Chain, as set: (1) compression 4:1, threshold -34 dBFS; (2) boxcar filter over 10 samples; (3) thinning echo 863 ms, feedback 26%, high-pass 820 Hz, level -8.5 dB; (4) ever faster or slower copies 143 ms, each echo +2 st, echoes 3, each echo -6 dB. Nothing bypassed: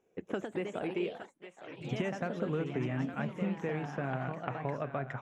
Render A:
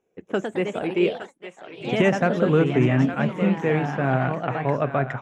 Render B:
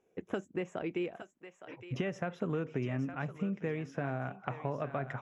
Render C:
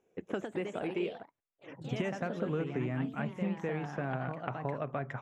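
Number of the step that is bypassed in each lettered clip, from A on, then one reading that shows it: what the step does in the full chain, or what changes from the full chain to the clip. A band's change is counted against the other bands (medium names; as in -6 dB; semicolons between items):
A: 1, mean gain reduction 11.0 dB; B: 4, loudness change -1.0 LU; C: 3, momentary loudness spread change -2 LU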